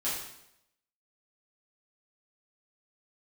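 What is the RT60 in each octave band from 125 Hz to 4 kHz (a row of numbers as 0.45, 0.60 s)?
0.80, 0.80, 0.80, 0.75, 0.75, 0.75 s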